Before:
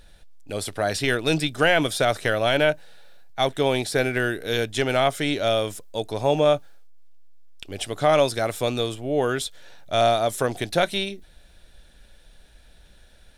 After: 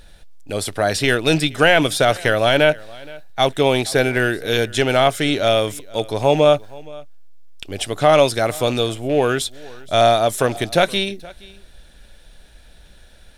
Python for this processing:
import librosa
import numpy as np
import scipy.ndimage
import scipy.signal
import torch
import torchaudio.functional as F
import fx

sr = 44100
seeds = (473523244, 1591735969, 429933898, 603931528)

p1 = fx.rattle_buzz(x, sr, strikes_db=-31.0, level_db=-30.0)
p2 = p1 + fx.echo_single(p1, sr, ms=471, db=-22.5, dry=0)
y = p2 * librosa.db_to_amplitude(5.5)